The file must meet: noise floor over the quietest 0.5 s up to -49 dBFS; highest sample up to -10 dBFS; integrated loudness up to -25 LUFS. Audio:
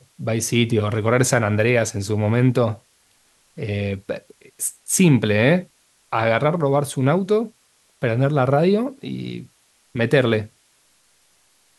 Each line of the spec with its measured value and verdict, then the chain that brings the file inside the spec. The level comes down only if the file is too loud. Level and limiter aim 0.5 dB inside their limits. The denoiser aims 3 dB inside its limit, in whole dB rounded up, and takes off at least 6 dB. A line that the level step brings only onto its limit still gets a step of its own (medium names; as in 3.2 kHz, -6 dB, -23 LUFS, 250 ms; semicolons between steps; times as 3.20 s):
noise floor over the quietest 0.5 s -60 dBFS: pass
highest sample -2.5 dBFS: fail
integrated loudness -20.0 LUFS: fail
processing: trim -5.5 dB; peak limiter -10.5 dBFS